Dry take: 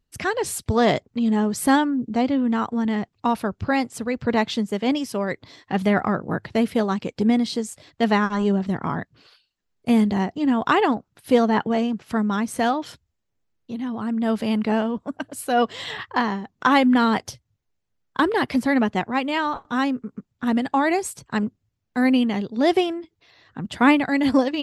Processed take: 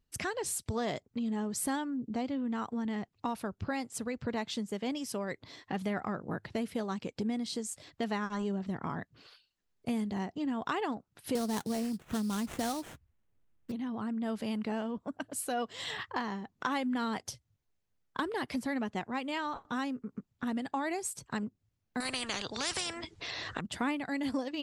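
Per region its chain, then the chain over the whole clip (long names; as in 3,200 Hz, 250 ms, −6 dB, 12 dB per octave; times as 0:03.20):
0:11.35–0:13.72: sample-rate reduction 4,900 Hz, jitter 20% + low-shelf EQ 250 Hz +7.5 dB
0:22.00–0:23.61: Butterworth low-pass 9,900 Hz 72 dB per octave + every bin compressed towards the loudest bin 4 to 1
whole clip: dynamic equaliser 8,500 Hz, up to +7 dB, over −47 dBFS, Q 0.75; downward compressor 2.5 to 1, threshold −33 dBFS; level −3.5 dB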